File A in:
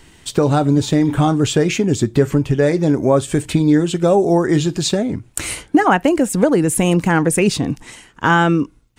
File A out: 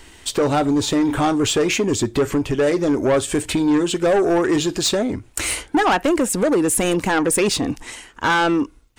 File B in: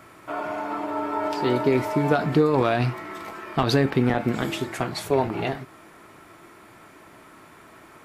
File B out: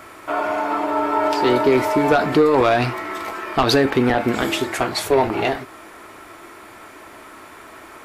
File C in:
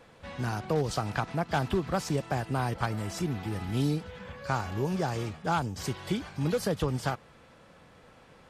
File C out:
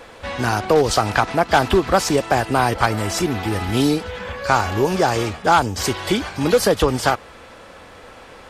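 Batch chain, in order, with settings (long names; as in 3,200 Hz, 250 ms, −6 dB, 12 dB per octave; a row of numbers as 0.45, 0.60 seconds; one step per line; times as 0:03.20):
parametric band 150 Hz −12.5 dB 1 octave
soft clipping −15.5 dBFS
loudness normalisation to −19 LKFS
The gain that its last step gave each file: +3.0, +8.5, +15.5 decibels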